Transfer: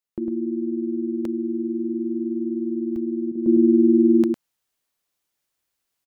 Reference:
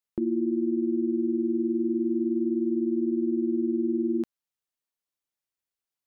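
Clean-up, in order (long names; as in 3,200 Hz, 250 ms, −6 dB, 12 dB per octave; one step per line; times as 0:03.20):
repair the gap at 0:01.25/0:02.96, 2.6 ms
repair the gap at 0:03.32, 32 ms
echo removal 104 ms −5.5 dB
level 0 dB, from 0:03.46 −10.5 dB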